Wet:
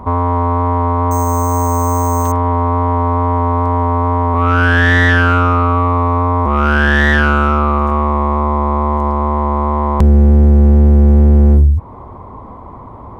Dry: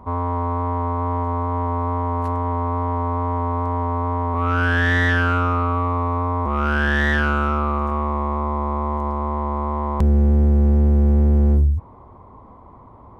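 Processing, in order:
in parallel at +0.5 dB: downward compressor, threshold −27 dBFS, peak gain reduction 13 dB
0:01.11–0:02.32: on the sum: bad sample-rate conversion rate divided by 6×, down none, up hold
level +5.5 dB

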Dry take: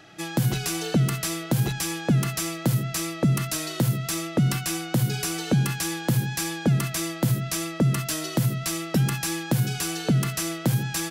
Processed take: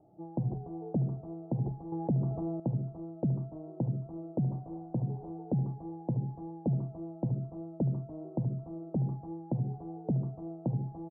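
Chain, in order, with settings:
0:04.38–0:05.31: variable-slope delta modulation 32 kbit/s
Butterworth low-pass 860 Hz 48 dB per octave
single-tap delay 645 ms −15 dB
0:01.92–0:02.60: envelope flattener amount 50%
level −9 dB

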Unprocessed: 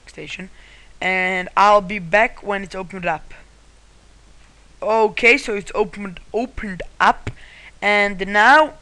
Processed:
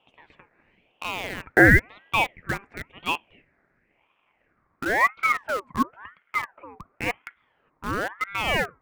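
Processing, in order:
high shelf with overshoot 1,900 Hz −8.5 dB, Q 3
band-pass filter sweep 980 Hz → 370 Hz, 0:03.41–0:05.40
in parallel at −5.5 dB: bit reduction 4 bits
on the sum: ring modulator whose carrier an LFO sweeps 1,200 Hz, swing 50%, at 0.96 Hz
level −3.5 dB

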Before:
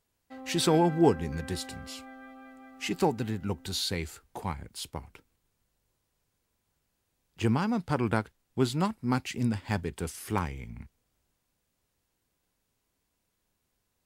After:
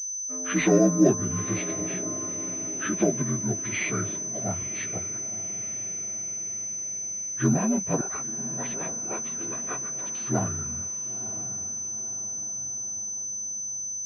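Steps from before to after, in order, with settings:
partials spread apart or drawn together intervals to 78%
0:08.01–0:10.15: gate on every frequency bin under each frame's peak −15 dB weak
notch filter 870 Hz, Q 5.4
feedback delay with all-pass diffusion 978 ms, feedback 51%, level −14 dB
switching amplifier with a slow clock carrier 6,100 Hz
level +5 dB

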